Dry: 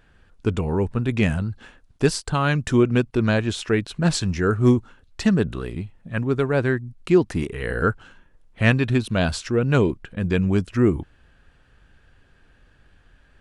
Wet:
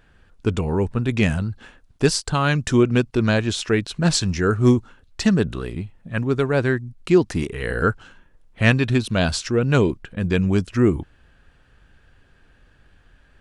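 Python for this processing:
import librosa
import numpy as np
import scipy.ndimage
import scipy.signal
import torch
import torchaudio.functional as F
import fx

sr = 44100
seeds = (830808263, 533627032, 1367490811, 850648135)

y = fx.dynamic_eq(x, sr, hz=5600.0, q=0.88, threshold_db=-47.0, ratio=4.0, max_db=5)
y = y * librosa.db_to_amplitude(1.0)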